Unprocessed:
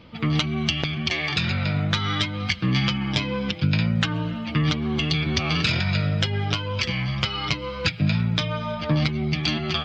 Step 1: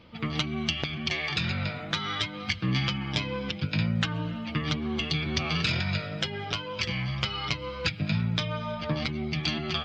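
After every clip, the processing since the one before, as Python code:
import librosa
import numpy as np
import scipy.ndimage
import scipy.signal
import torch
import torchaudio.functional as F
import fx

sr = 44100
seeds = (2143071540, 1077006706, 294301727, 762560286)

y = fx.hum_notches(x, sr, base_hz=50, count=6)
y = y * 10.0 ** (-4.5 / 20.0)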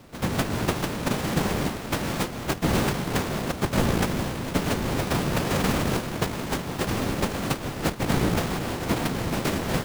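y = np.r_[np.sort(x[:len(x) // 256 * 256].reshape(-1, 256), axis=1).ravel(), x[len(x) // 256 * 256:]]
y = fx.whisperise(y, sr, seeds[0])
y = y * 10.0 ** (4.0 / 20.0)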